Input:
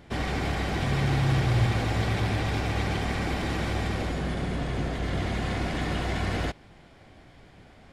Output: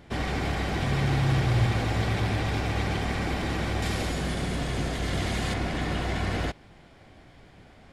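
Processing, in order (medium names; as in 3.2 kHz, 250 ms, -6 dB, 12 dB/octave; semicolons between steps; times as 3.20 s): 3.82–5.54 s: treble shelf 3.9 kHz +11 dB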